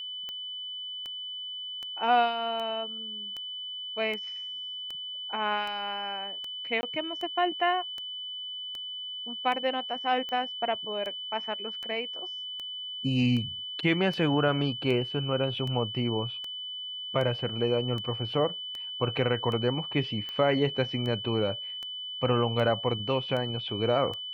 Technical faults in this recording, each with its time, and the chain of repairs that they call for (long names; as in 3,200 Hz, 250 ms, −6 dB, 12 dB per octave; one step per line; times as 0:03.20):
scratch tick 78 rpm −24 dBFS
whistle 3,000 Hz −35 dBFS
0:06.81–0:06.83: drop-out 20 ms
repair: click removal
notch filter 3,000 Hz, Q 30
repair the gap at 0:06.81, 20 ms